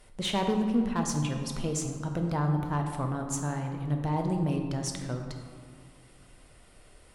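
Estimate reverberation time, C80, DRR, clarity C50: 2.1 s, 6.5 dB, 3.0 dB, 5.0 dB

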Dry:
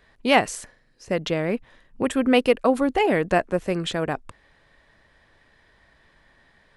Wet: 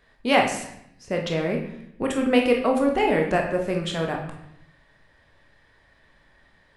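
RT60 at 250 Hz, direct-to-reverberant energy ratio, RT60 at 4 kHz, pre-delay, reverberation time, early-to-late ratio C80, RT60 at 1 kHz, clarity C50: 1.1 s, 1.5 dB, 0.65 s, 17 ms, 0.75 s, 9.5 dB, 0.75 s, 6.0 dB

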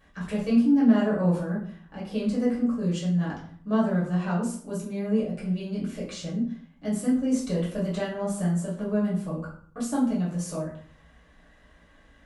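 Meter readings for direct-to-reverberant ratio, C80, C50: -8.0 dB, 9.5 dB, 5.0 dB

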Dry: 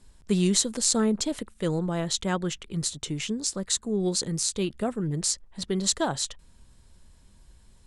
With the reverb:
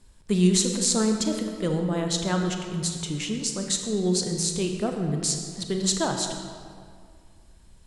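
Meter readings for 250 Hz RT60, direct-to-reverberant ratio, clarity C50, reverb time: 2.1 s, 3.5 dB, 5.0 dB, 2.1 s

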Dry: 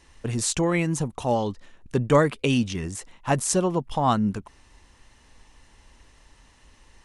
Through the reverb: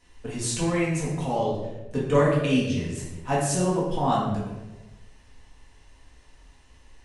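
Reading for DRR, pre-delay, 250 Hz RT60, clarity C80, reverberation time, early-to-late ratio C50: -6.5 dB, 4 ms, 1.2 s, 4.0 dB, 1.1 s, 1.5 dB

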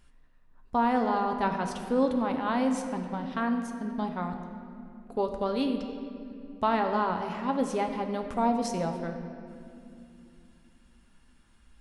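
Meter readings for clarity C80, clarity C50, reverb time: 7.5 dB, 6.5 dB, 2.7 s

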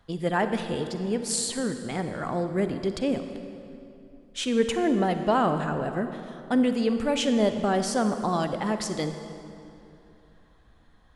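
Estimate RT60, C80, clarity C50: 2.8 s, 9.0 dB, 8.0 dB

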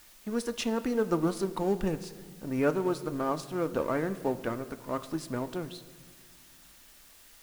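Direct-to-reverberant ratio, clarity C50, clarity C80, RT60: 10.5 dB, 14.5 dB, 16.0 dB, 1.6 s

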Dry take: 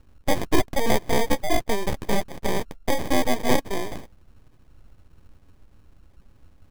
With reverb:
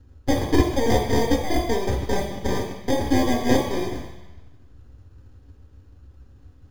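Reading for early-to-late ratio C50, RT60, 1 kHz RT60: 4.0 dB, 1.0 s, 1.1 s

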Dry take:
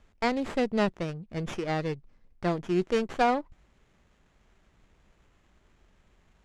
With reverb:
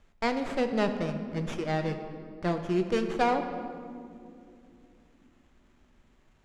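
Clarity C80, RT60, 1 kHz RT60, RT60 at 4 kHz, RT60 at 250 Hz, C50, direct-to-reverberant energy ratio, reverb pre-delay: 9.0 dB, 2.7 s, 2.1 s, 1.3 s, 4.4 s, 8.0 dB, 6.0 dB, 3 ms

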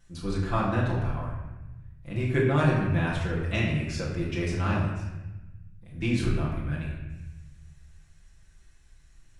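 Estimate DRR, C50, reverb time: -7.5 dB, 2.0 dB, 1.0 s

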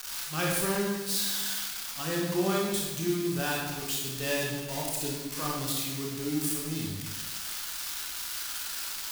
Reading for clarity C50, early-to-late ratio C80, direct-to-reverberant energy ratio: 0.0 dB, 3.0 dB, -3.5 dB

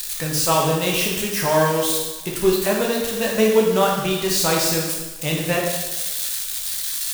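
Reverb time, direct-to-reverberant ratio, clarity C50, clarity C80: 1.1 s, -2.5 dB, 2.0 dB, 5.0 dB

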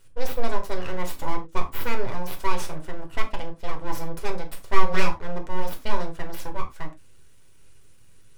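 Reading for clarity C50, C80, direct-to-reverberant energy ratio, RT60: 13.0 dB, 20.5 dB, 3.0 dB, no single decay rate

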